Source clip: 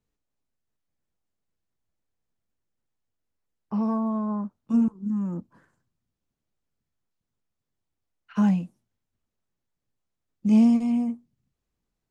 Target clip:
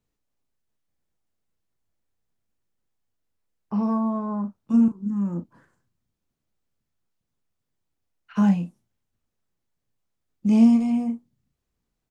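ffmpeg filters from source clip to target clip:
-filter_complex "[0:a]asplit=2[s0][s1];[s1]adelay=35,volume=0.355[s2];[s0][s2]amix=inputs=2:normalize=0,volume=1.19"

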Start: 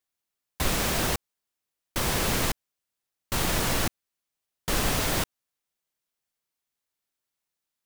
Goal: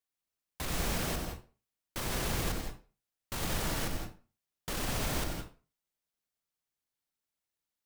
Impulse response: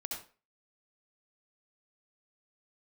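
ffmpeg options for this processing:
-filter_complex "[0:a]alimiter=limit=0.1:level=0:latency=1:release=21,asplit=2[s0][s1];[1:a]atrim=start_sample=2205,lowshelf=f=350:g=9,adelay=93[s2];[s1][s2]afir=irnorm=-1:irlink=0,volume=0.596[s3];[s0][s3]amix=inputs=2:normalize=0,volume=0.473"

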